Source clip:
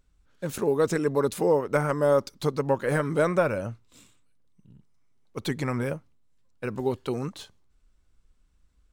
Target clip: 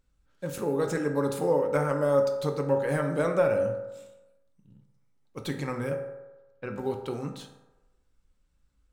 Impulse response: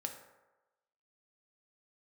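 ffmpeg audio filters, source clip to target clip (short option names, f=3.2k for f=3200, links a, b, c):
-filter_complex "[0:a]asettb=1/sr,asplit=3[a][b][c];[a]atrim=end=5.954[d];[b]atrim=start=5.95:end=6.7,asetpts=PTS-STARTPTS,afade=t=in:d=0.004:c=qsin,afade=t=out:st=0.746:d=0.004:c=qsin,lowpass=4k[e];[c]atrim=start=6.696[f];[d][e]acrossfade=d=0.004:c1=hsin:c2=qsin[g];[g][f]acrossfade=d=0.004:c1=qsin:c2=hsin[h];[1:a]atrim=start_sample=2205[i];[h][i]afir=irnorm=-1:irlink=0,volume=-2dB"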